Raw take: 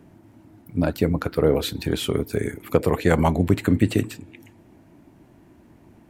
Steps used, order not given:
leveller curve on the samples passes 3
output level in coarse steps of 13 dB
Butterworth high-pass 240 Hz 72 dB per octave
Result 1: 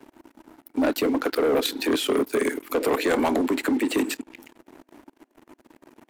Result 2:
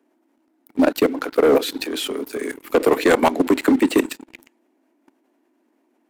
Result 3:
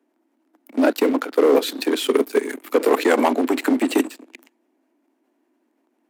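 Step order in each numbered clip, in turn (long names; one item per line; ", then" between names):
output level in coarse steps, then Butterworth high-pass, then leveller curve on the samples
Butterworth high-pass, then leveller curve on the samples, then output level in coarse steps
leveller curve on the samples, then output level in coarse steps, then Butterworth high-pass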